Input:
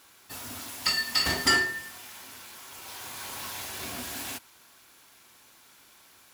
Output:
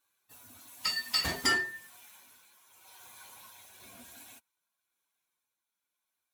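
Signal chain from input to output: per-bin expansion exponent 1.5; Doppler pass-by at 1.68, 5 m/s, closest 4.2 m; tremolo 0.97 Hz, depth 35%

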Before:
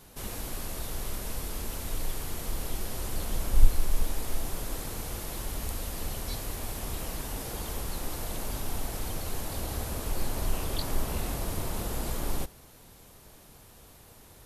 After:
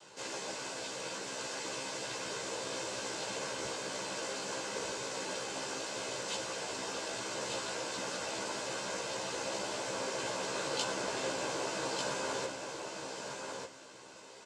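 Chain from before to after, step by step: HPF 330 Hz 12 dB/oct; noise vocoder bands 8; doubler 15 ms -2 dB; feedback echo 1.195 s, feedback 17%, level -5 dB; reverb RT60 0.40 s, pre-delay 3 ms, DRR 12.5 dB

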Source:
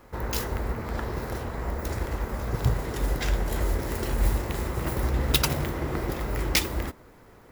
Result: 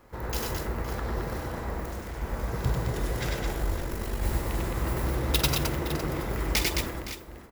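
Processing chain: 1.8–2.22 overloaded stage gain 34.5 dB; 3.52–4.22 AM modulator 50 Hz, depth 60%; tapped delay 48/95/101/216/515/558 ms -11.5/-4.5/-5.5/-4.5/-15/-12.5 dB; gain -4 dB

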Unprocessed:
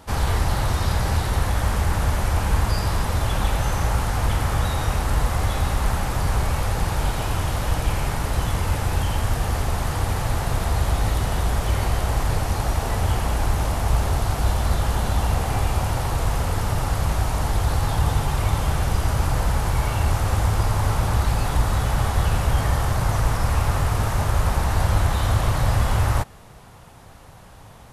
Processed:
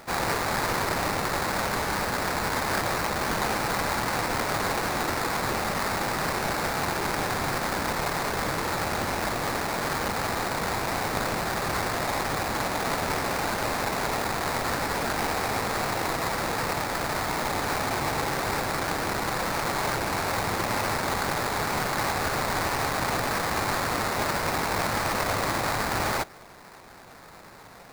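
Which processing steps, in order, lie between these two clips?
HPF 170 Hz 12 dB/oct; tilt +2.5 dB/oct; sample-rate reducer 3100 Hz, jitter 20%

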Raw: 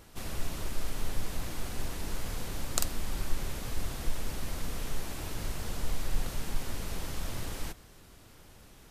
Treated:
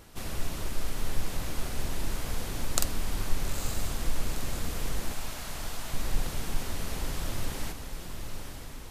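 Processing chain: 5.13–5.94 Chebyshev high-pass 590 Hz, order 10; diffused feedback echo 0.911 s, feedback 55%, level -7 dB; gain +2 dB

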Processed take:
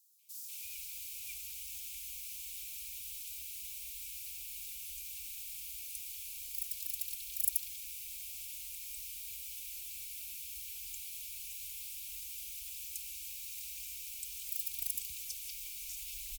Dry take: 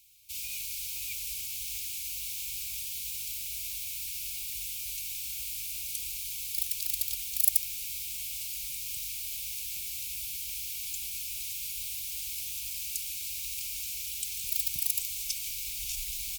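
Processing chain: notches 50/100/150/200/250/300 Hz; comb 3.4 ms, depth 37%; three bands offset in time highs, mids, lows 0.19/0.34 s, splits 160/4600 Hz; gain -8 dB

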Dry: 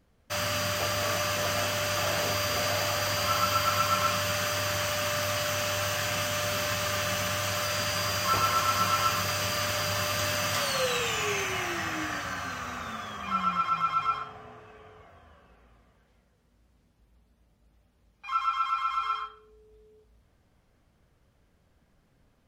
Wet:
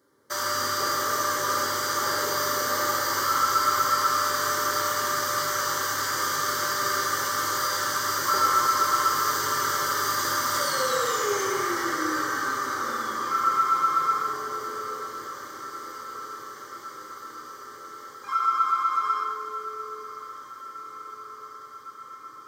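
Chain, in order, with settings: HPF 150 Hz 24 dB/oct; in parallel at +1 dB: compressor, threshold -37 dBFS, peak gain reduction 14.5 dB; on the sum: fixed phaser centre 700 Hz, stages 6; diffused feedback echo 1.214 s, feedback 74%, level -14 dB; reverb RT60 1.7 s, pre-delay 5 ms, DRR -1.5 dB

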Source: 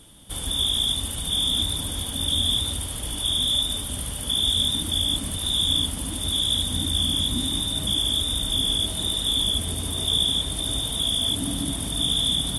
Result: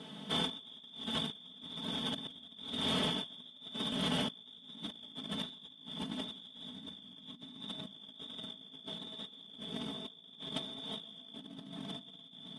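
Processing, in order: HPF 140 Hz 24 dB/oct; air absorption 190 m; comb 4.6 ms, depth 84%; echo 0.139 s -7.5 dB; negative-ratio compressor -36 dBFS, ratio -0.5; gain -5 dB

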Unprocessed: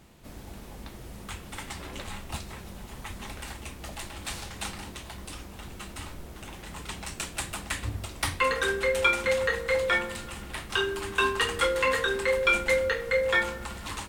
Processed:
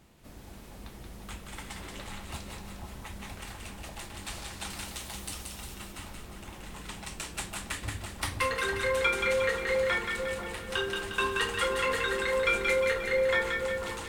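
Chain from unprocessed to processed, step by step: 4.7–5.75 high shelf 3800 Hz +11 dB; split-band echo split 1100 Hz, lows 0.491 s, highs 0.178 s, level -4 dB; gain -4.5 dB

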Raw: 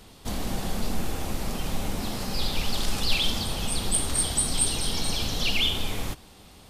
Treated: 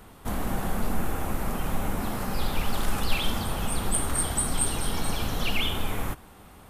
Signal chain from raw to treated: EQ curve 530 Hz 0 dB, 1400 Hz +5 dB, 4700 Hz -12 dB, 12000 Hz +1 dB; gain +1 dB

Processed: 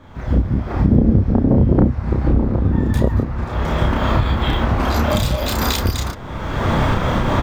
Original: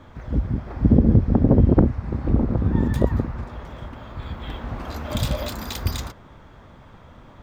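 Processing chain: recorder AGC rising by 34 dB/s; doubler 31 ms -3 dB

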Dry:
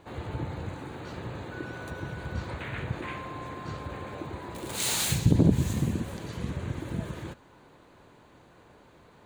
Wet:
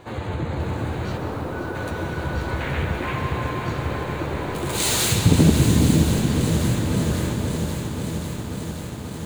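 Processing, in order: 1.17–1.75 elliptic band-pass 220–1400 Hz; in parallel at -3 dB: compressor, threshold -37 dBFS, peak gain reduction 20.5 dB; on the sum: flange 0.6 Hz, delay 7.8 ms, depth 9 ms, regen +43%; echo with dull and thin repeats by turns 0.411 s, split 1100 Hz, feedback 58%, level -6 dB; on a send at -4.5 dB: reverb RT60 2.7 s, pre-delay 98 ms; on the sum: lo-fi delay 0.536 s, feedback 80%, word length 9-bit, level -9 dB; gain +8.5 dB

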